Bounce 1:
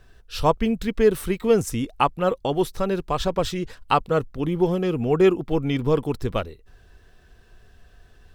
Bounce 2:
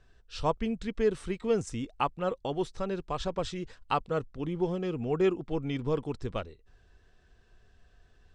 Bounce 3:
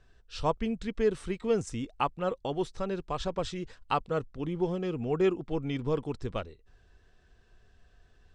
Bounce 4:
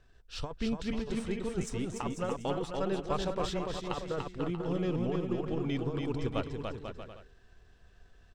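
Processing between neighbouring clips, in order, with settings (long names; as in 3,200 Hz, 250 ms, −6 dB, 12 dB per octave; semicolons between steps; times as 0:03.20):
Butterworth low-pass 8,400 Hz 36 dB per octave; level −9 dB
no processing that can be heard
gain on one half-wave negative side −3 dB; compressor whose output falls as the input rises −31 dBFS, ratio −0.5; bouncing-ball delay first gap 290 ms, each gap 0.7×, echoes 5; level −1 dB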